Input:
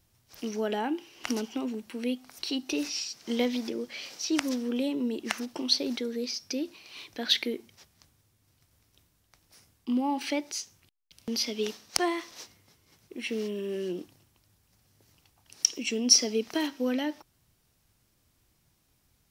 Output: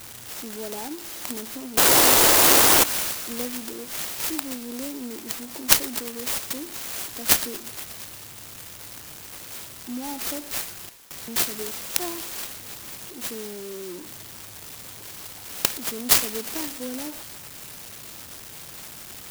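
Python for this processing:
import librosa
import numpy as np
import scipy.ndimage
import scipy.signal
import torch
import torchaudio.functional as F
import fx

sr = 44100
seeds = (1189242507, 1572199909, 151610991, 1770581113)

p1 = x + 0.5 * 10.0 ** (-32.5 / 20.0) * np.sign(x)
p2 = fx.highpass(p1, sr, hz=170.0, slope=6)
p3 = fx.peak_eq(p2, sr, hz=4200.0, db=14.5, octaves=0.88)
p4 = fx.spec_paint(p3, sr, seeds[0], shape='noise', start_s=1.77, length_s=1.07, low_hz=270.0, high_hz=4300.0, level_db=-10.0)
p5 = p4 + fx.echo_wet_highpass(p4, sr, ms=118, feedback_pct=79, hz=1600.0, wet_db=-18.5, dry=0)
p6 = fx.clock_jitter(p5, sr, seeds[1], jitter_ms=0.15)
y = p6 * 10.0 ** (-5.5 / 20.0)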